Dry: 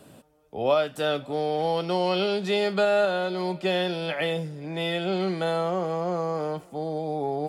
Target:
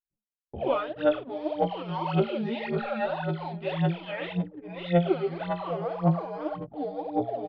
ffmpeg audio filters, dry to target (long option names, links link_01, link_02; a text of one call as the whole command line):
ffmpeg -i in.wav -filter_complex "[0:a]afftfilt=real='re':imag='-im':win_size=2048:overlap=0.75,lowshelf=frequency=210:gain=8.5,bandreject=frequency=118.3:width_type=h:width=4,bandreject=frequency=236.6:width_type=h:width=4,bandreject=frequency=354.9:width_type=h:width=4,bandreject=frequency=473.2:width_type=h:width=4,bandreject=frequency=591.5:width_type=h:width=4,bandreject=frequency=709.8:width_type=h:width=4,bandreject=frequency=828.1:width_type=h:width=4,asplit=2[link_01][link_02];[link_02]aecho=0:1:13|42|65:0.473|0.237|0.2[link_03];[link_01][link_03]amix=inputs=2:normalize=0,acrossover=split=2800[link_04][link_05];[link_05]acompressor=threshold=-51dB:ratio=4:attack=1:release=60[link_06];[link_04][link_06]amix=inputs=2:normalize=0,agate=range=-47dB:threshold=-47dB:ratio=16:detection=peak,aphaser=in_gain=1:out_gain=1:delay=4.9:decay=0.77:speed=1.8:type=sinusoidal,lowpass=frequency=3900:width=0.5412,lowpass=frequency=3900:width=1.3066,anlmdn=0.251,volume=-4.5dB" out.wav